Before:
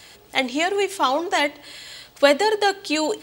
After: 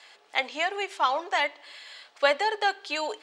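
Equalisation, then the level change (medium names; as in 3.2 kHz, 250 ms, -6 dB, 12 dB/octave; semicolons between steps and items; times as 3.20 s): band-pass 750–7700 Hz; treble shelf 4.1 kHz -11 dB; -1.5 dB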